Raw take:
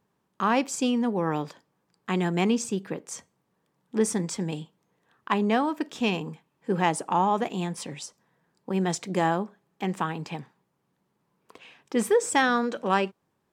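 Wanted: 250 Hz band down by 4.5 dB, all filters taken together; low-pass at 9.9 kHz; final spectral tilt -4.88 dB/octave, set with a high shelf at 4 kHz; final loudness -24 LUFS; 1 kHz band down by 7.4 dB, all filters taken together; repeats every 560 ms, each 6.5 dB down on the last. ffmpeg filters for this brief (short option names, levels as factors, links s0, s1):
-af "lowpass=9900,equalizer=f=250:t=o:g=-5.5,equalizer=f=1000:t=o:g=-9,highshelf=f=4000:g=-5,aecho=1:1:560|1120|1680|2240|2800|3360:0.473|0.222|0.105|0.0491|0.0231|0.0109,volume=2.37"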